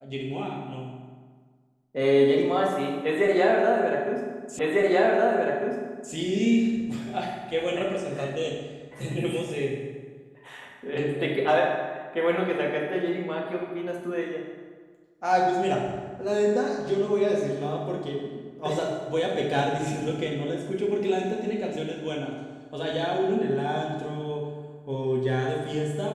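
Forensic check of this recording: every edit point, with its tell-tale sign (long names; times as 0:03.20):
0:04.59: the same again, the last 1.55 s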